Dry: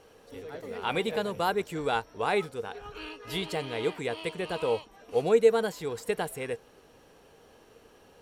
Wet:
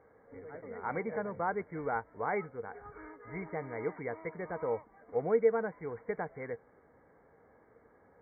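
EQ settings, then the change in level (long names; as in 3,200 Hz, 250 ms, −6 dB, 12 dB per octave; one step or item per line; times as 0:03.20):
high-pass filter 51 Hz
linear-phase brick-wall low-pass 2,300 Hz
parametric band 380 Hz −3.5 dB 0.31 octaves
−5.0 dB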